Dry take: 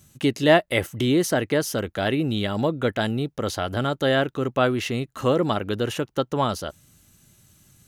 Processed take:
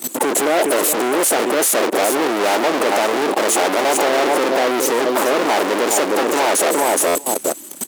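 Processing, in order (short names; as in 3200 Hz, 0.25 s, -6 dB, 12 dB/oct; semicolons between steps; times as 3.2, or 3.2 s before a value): bin magnitudes rounded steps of 30 dB; elliptic band-stop 870–7500 Hz; in parallel at -9 dB: bit-crush 7-bit; on the sum: negative-ratio compressor -29 dBFS, ratio -1; on a send: feedback echo 0.416 s, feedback 19%, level -12 dB; on the sum: fuzz box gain 50 dB, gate -58 dBFS; level quantiser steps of 18 dB; HPF 320 Hz 24 dB/oct; high shelf 11000 Hz -4.5 dB; stuck buffer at 7.07, samples 512, times 6; gain +4 dB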